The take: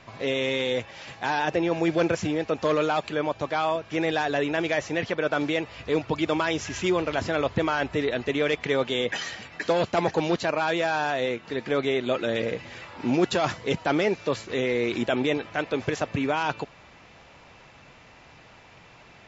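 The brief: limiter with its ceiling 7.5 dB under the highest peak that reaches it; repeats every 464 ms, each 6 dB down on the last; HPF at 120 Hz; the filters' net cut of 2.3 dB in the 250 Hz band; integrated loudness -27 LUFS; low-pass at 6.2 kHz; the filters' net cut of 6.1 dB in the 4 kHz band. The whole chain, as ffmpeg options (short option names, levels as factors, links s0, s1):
-af "highpass=120,lowpass=6200,equalizer=f=250:t=o:g=-3,equalizer=f=4000:t=o:g=-7.5,alimiter=limit=0.119:level=0:latency=1,aecho=1:1:464|928|1392|1856|2320|2784:0.501|0.251|0.125|0.0626|0.0313|0.0157,volume=1.19"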